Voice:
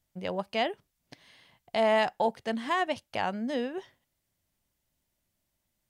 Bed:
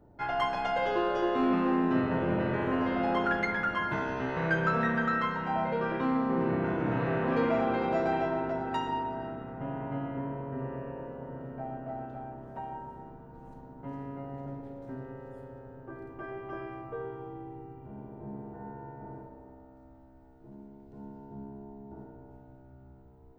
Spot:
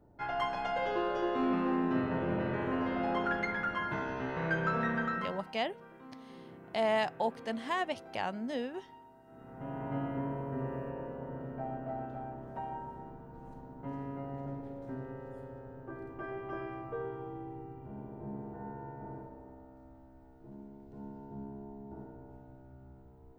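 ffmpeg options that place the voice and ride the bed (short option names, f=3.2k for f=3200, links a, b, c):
-filter_complex "[0:a]adelay=5000,volume=-5dB[a];[1:a]volume=18dB,afade=t=out:st=5.01:d=0.52:silence=0.11885,afade=t=in:st=9.26:d=0.73:silence=0.0794328[b];[a][b]amix=inputs=2:normalize=0"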